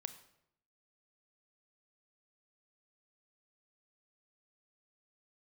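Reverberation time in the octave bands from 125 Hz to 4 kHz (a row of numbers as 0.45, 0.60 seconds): 0.95, 0.85, 0.80, 0.75, 0.65, 0.60 seconds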